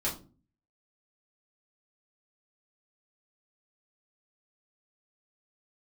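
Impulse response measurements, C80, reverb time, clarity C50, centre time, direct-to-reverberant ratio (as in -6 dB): 16.0 dB, 0.35 s, 10.5 dB, 23 ms, -7.5 dB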